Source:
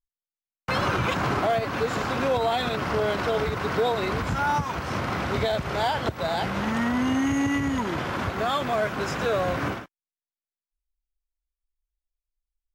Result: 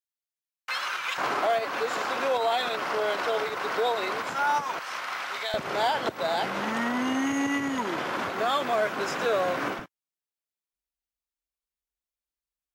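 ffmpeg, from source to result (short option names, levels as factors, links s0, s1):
-af "asetnsamples=n=441:p=0,asendcmd='1.18 highpass f 470;4.79 highpass f 1100;5.54 highpass f 290;9.79 highpass f 100',highpass=1500"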